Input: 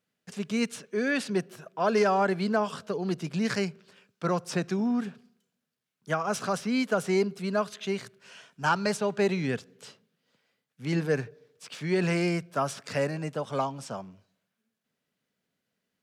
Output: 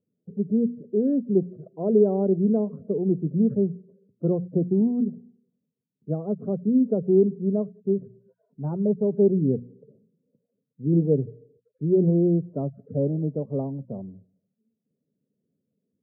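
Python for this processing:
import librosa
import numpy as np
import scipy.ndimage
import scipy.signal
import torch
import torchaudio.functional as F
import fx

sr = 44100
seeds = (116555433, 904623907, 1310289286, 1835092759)

y = fx.spec_topn(x, sr, count=32)
y = scipy.signal.sosfilt(scipy.signal.cheby2(4, 80, 2700.0, 'lowpass', fs=sr, output='sos'), y)
y = fx.hum_notches(y, sr, base_hz=60, count=4)
y = F.gain(torch.from_numpy(y), 8.0).numpy()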